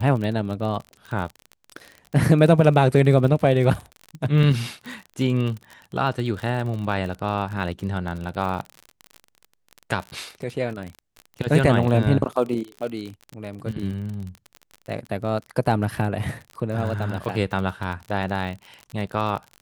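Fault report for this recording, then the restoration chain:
surface crackle 37 per second −29 dBFS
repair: click removal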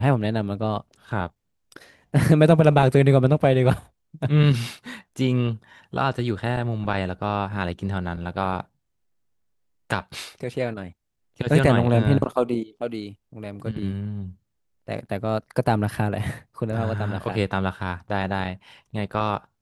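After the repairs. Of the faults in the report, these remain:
none of them is left

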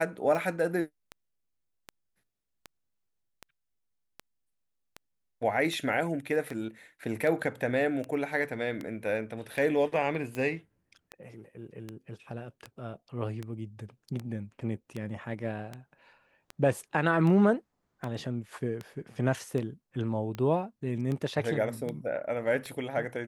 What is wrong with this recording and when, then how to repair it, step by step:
scratch tick 78 rpm −23 dBFS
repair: click removal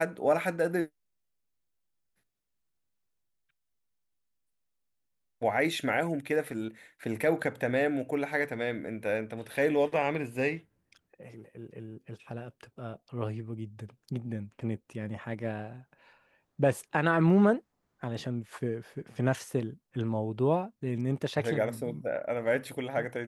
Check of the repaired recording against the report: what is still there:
none of them is left

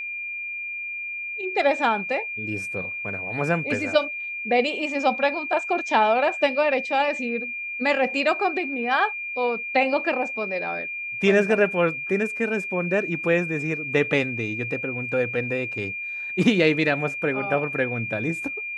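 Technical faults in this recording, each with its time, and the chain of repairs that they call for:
whistle 2,400 Hz −29 dBFS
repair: notch filter 2,400 Hz, Q 30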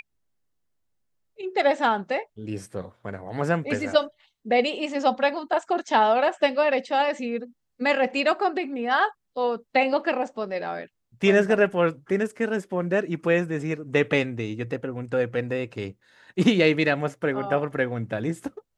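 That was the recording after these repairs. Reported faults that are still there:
none of them is left

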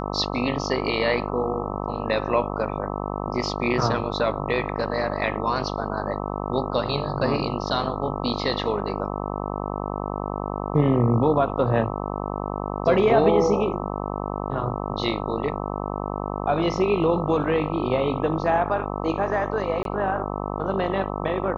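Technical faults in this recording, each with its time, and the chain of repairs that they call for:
mains buzz 50 Hz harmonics 26 −29 dBFS
0:19.83–0:19.85: drop-out 22 ms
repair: hum removal 50 Hz, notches 26
repair the gap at 0:19.83, 22 ms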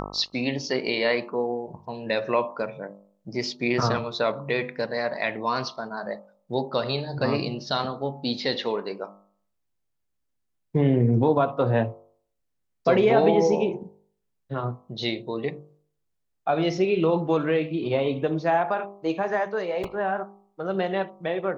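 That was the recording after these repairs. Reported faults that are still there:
none of them is left

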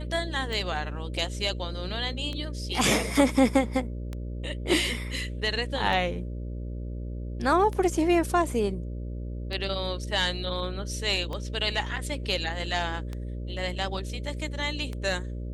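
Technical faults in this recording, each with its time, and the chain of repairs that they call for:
mains buzz 60 Hz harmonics 10 −34 dBFS
scratch tick 33 1/3 rpm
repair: click removal
hum removal 60 Hz, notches 10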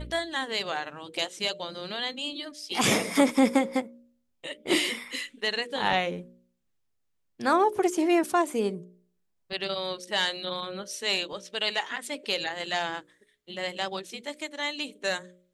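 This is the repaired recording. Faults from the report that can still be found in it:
none of them is left

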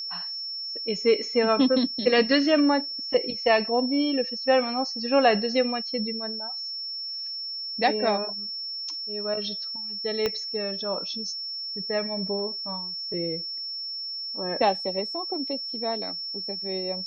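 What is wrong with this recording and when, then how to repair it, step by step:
whistle 5,400 Hz −31 dBFS
0:10.26: click −12 dBFS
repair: click removal
notch filter 5,400 Hz, Q 30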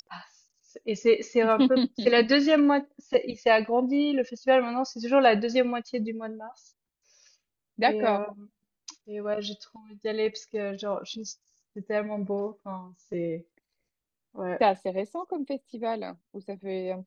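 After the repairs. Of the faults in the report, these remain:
0:10.26: click

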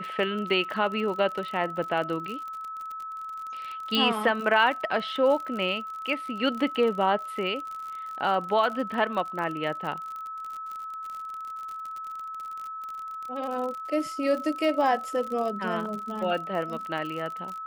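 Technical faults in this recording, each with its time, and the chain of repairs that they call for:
surface crackle 48 per second −33 dBFS
whistle 1,300 Hz −34 dBFS
0:03.95: click −13 dBFS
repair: click removal
notch filter 1,300 Hz, Q 30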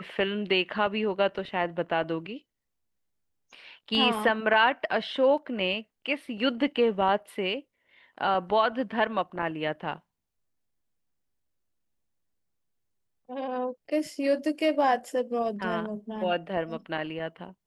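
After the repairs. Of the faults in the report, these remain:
0:03.95: click

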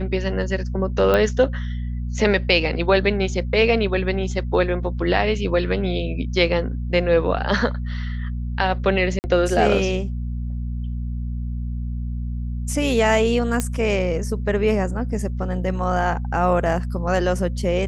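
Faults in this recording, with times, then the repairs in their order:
mains hum 60 Hz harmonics 4 −26 dBFS
0:01.14: click −8 dBFS
0:09.19–0:09.24: drop-out 49 ms
0:13.60: click −8 dBFS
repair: click removal
hum removal 60 Hz, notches 4
repair the gap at 0:09.19, 49 ms

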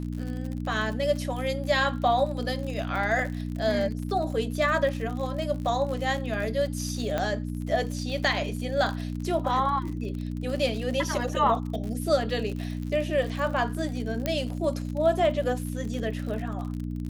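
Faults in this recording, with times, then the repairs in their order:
surface crackle 56 per second −33 dBFS
mains hum 60 Hz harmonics 5 −32 dBFS
0:07.18: click −14 dBFS
0:14.26: click −12 dBFS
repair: click removal
hum removal 60 Hz, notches 5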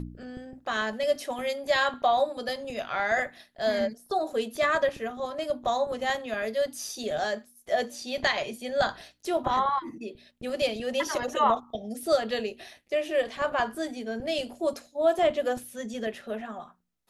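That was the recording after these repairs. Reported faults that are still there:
none of them is left

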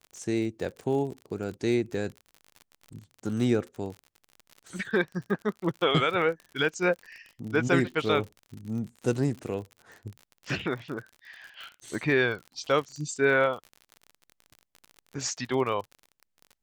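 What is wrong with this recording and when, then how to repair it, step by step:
surface crackle 51 per second −36 dBFS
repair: click removal

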